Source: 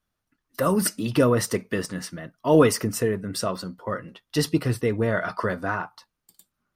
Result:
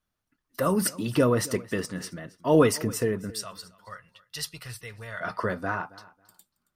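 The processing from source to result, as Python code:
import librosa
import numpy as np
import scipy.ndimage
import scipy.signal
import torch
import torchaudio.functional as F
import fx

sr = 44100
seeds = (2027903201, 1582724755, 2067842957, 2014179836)

y = fx.tone_stack(x, sr, knobs='10-0-10', at=(3.3, 5.21))
y = fx.echo_feedback(y, sr, ms=273, feedback_pct=19, wet_db=-20.5)
y = F.gain(torch.from_numpy(y), -2.5).numpy()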